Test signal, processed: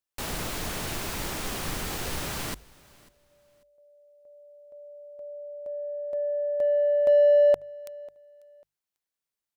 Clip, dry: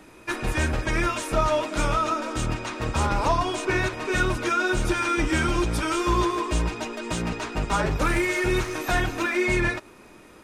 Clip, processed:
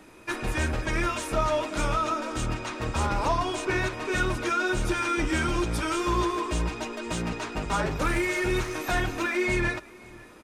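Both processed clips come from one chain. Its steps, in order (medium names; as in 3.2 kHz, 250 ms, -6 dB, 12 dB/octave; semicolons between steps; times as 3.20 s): hum notches 50/100/150 Hz; in parallel at -7 dB: saturation -21.5 dBFS; on the sum: feedback delay 544 ms, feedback 25%, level -23.5 dB; trim -5 dB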